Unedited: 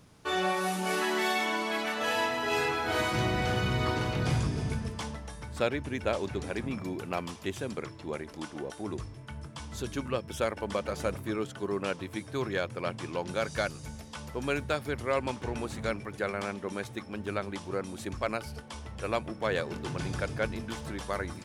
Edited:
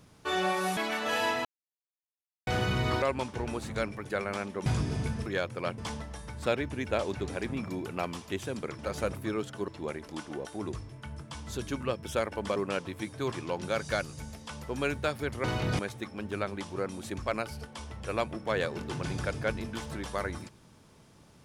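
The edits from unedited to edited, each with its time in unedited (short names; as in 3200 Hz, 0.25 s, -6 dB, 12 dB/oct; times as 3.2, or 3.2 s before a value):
0.77–1.72 cut
2.4–3.42 mute
3.97–4.32 swap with 15.1–16.74
10.81–11.7 move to 7.93
12.46–12.98 move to 4.92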